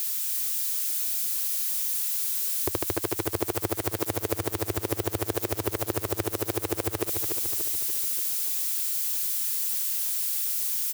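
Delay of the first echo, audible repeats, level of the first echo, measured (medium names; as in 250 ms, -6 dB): 291 ms, 6, -6.5 dB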